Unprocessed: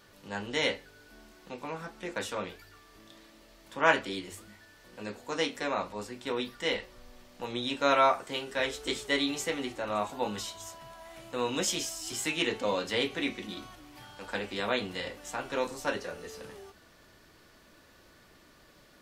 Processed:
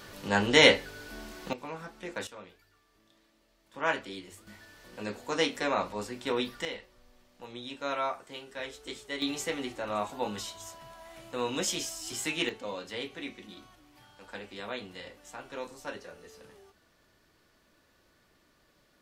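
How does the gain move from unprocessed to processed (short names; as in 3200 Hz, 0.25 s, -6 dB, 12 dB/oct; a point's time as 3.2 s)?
+10.5 dB
from 1.53 s -2 dB
from 2.27 s -12 dB
from 3.74 s -5.5 dB
from 4.47 s +2.5 dB
from 6.65 s -8.5 dB
from 9.22 s -1 dB
from 12.49 s -8 dB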